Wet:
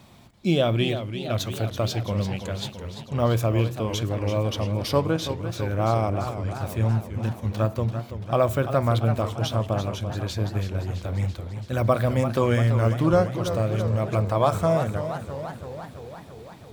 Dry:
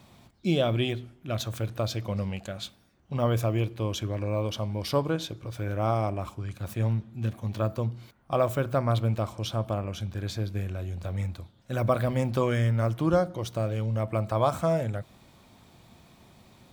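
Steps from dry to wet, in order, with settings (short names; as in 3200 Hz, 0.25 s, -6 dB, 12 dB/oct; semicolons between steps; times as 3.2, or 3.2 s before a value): warbling echo 0.337 s, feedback 67%, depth 149 cents, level -10 dB; gain +3.5 dB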